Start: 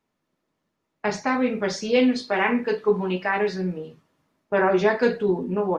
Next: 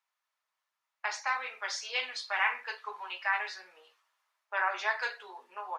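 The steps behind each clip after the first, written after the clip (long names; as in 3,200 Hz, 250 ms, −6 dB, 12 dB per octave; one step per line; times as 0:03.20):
high-pass filter 910 Hz 24 dB per octave
level −3.5 dB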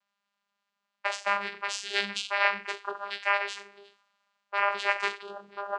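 graphic EQ with 15 bands 250 Hz +7 dB, 630 Hz −8 dB, 4,000 Hz +7 dB
channel vocoder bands 8, saw 201 Hz
level +4.5 dB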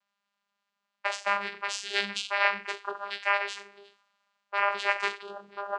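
no processing that can be heard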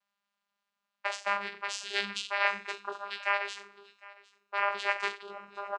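single-tap delay 757 ms −22 dB
level −3 dB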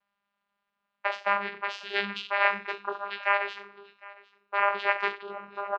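high-frequency loss of the air 310 metres
level +6.5 dB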